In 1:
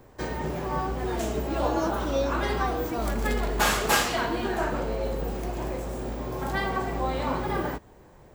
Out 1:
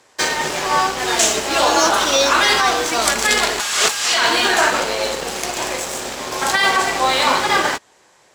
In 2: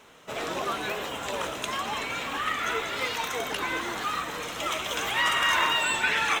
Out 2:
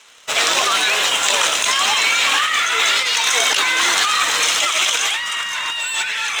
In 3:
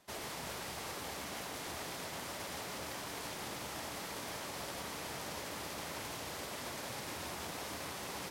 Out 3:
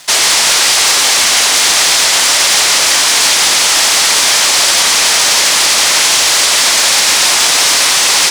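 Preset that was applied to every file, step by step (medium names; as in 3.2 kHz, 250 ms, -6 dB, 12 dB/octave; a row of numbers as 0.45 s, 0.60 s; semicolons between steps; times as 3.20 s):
frequency weighting ITU-R 468; waveshaping leveller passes 2; compressor with a negative ratio -20 dBFS, ratio -1; peak normalisation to -1.5 dBFS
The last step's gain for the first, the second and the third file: +5.0 dB, +2.0 dB, +21.5 dB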